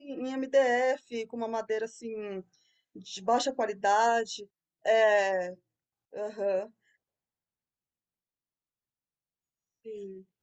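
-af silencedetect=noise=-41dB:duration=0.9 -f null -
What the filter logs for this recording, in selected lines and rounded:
silence_start: 6.66
silence_end: 9.86 | silence_duration: 3.20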